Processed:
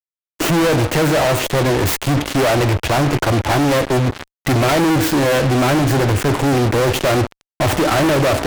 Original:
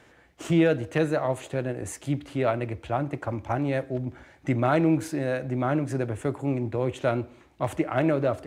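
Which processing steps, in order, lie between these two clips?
tracing distortion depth 0.3 ms; fuzz box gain 47 dB, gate -42 dBFS

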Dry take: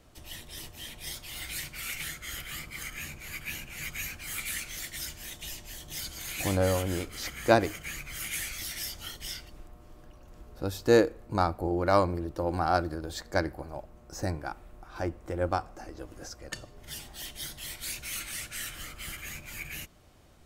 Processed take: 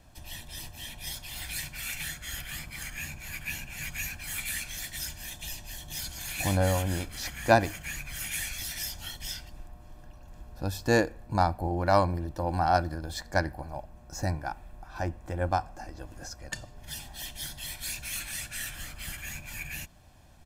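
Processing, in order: comb 1.2 ms, depth 56%

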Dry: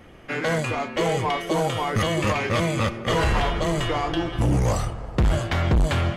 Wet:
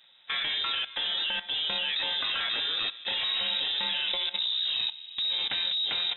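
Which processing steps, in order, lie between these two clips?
level quantiser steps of 15 dB; inverted band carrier 3800 Hz

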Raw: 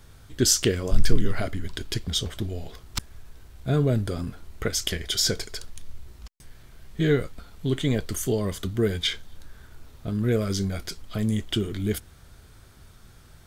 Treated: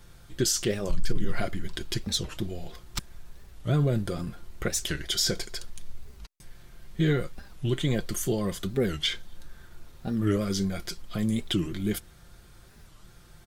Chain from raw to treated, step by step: comb 5.7 ms, depth 46%; limiter -13 dBFS, peak gain reduction 11 dB; record warp 45 rpm, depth 250 cents; gain -2 dB

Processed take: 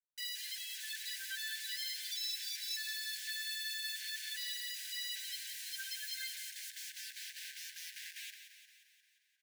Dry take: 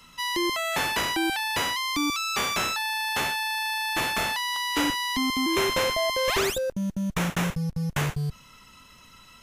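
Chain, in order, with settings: bell 2200 Hz -11 dB 1.6 oct; one-sided clip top -32.5 dBFS; flange 0.47 Hz, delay 7.3 ms, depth 6.5 ms, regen -26%; 6.33–6.96 ring modulator 280 Hz; loudest bins only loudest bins 8; bit-crush 8-bit; brick-wall FIR high-pass 1500 Hz; feedback echo 0.176 s, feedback 59%, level -9.5 dB; plate-style reverb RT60 4.7 s, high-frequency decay 0.6×, DRR 16 dB; gain +6.5 dB

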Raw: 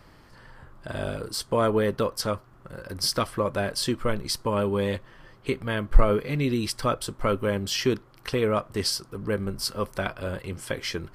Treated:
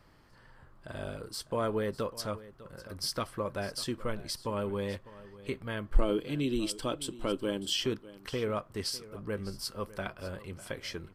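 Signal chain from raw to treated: 5.95–7.86 thirty-one-band EQ 100 Hz -11 dB, 315 Hz +11 dB, 1250 Hz -5 dB, 2000 Hz -6 dB, 3150 Hz +11 dB, 8000 Hz +8 dB; echo 0.601 s -17.5 dB; gain -8.5 dB

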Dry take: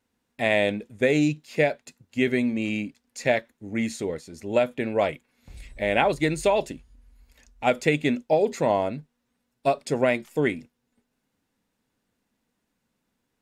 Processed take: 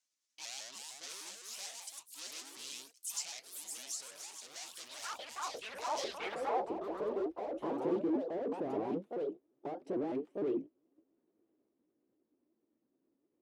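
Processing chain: repeated pitch sweeps +6 st, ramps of 0.151 s; dynamic EQ 390 Hz, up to +3 dB, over -33 dBFS, Q 1.2; overloaded stage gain 32.5 dB; band-pass sweep 6200 Hz -> 350 Hz, 5.96–6.8; echoes that change speed 0.402 s, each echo +3 st, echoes 3; gain +4 dB

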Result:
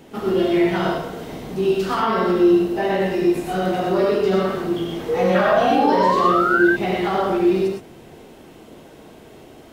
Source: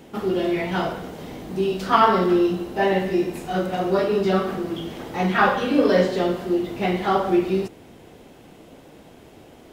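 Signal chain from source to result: limiter -14 dBFS, peak gain reduction 11 dB; painted sound rise, 5.08–6.64, 460–1600 Hz -22 dBFS; non-linear reverb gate 0.14 s rising, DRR -0.5 dB

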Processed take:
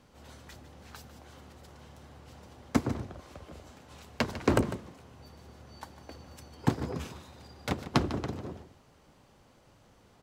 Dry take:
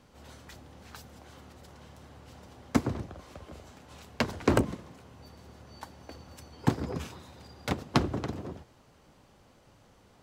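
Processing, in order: echo 0.15 s -13.5 dB; gain -1 dB

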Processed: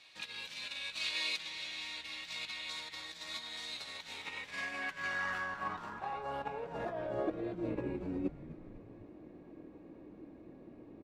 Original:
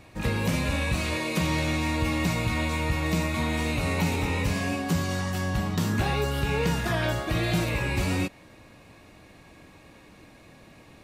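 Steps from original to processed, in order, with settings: 2.7–4.82 bell 2600 Hz -11 dB 0.49 oct; negative-ratio compressor -29 dBFS, ratio -0.5; band-pass sweep 3800 Hz -> 330 Hz, 3.81–7.76; frequency-shifting echo 0.251 s, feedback 65%, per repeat -130 Hz, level -15 dB; gain +1.5 dB

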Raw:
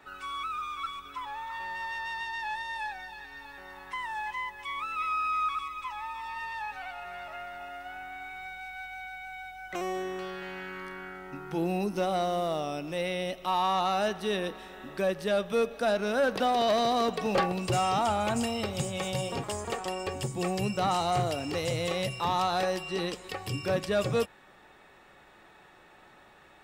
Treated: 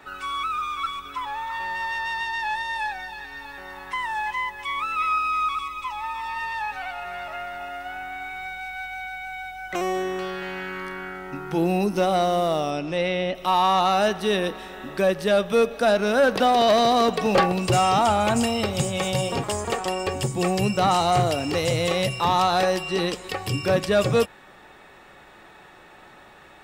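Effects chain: 5.18–6.04 bell 1600 Hz -12.5 dB 0.33 oct; 12.7–13.34 LPF 8100 Hz -> 3100 Hz 12 dB/oct; gain +7.5 dB

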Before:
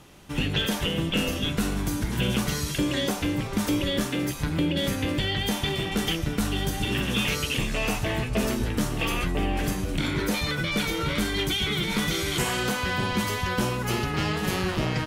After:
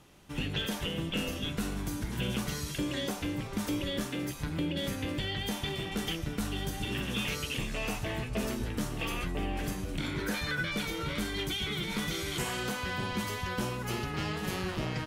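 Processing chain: 10.26–10.73 bell 1600 Hz +13 dB 0.27 oct; gain -7.5 dB

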